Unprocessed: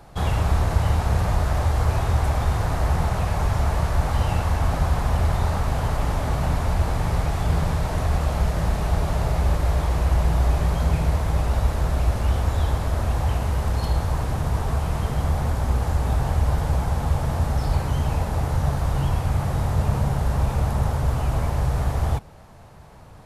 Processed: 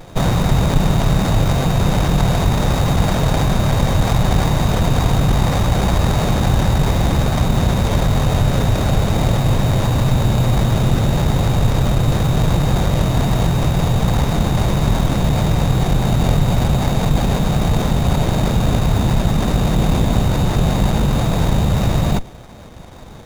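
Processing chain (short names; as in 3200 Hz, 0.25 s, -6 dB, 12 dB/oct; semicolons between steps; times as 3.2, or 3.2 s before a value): in parallel at -2 dB: negative-ratio compressor -24 dBFS, ratio -1; on the sum: inverted band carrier 3800 Hz; running maximum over 17 samples; gain +4.5 dB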